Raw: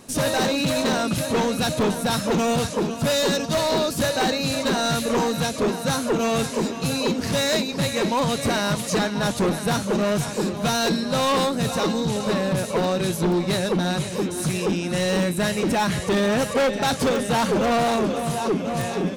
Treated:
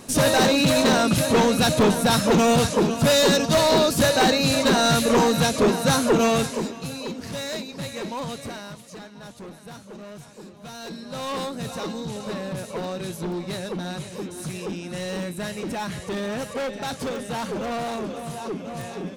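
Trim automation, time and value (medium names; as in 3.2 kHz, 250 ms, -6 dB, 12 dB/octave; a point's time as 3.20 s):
6.23 s +3.5 dB
6.93 s -9 dB
8.30 s -9 dB
8.87 s -18.5 dB
10.60 s -18.5 dB
11.36 s -8 dB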